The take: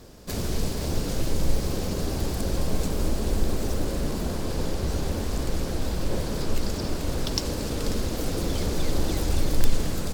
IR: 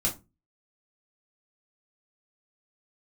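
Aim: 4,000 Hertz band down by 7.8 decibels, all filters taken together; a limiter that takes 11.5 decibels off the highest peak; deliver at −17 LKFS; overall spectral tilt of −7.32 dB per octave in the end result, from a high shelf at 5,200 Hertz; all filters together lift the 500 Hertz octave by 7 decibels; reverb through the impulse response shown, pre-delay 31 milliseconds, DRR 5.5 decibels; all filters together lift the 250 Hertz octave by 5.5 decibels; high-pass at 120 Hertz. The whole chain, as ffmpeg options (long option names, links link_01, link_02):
-filter_complex "[0:a]highpass=120,equalizer=frequency=250:width_type=o:gain=5.5,equalizer=frequency=500:width_type=o:gain=7,equalizer=frequency=4000:width_type=o:gain=-6.5,highshelf=frequency=5200:gain=-7.5,alimiter=limit=-19.5dB:level=0:latency=1,asplit=2[link_01][link_02];[1:a]atrim=start_sample=2205,adelay=31[link_03];[link_02][link_03]afir=irnorm=-1:irlink=0,volume=-12.5dB[link_04];[link_01][link_04]amix=inputs=2:normalize=0,volume=9.5dB"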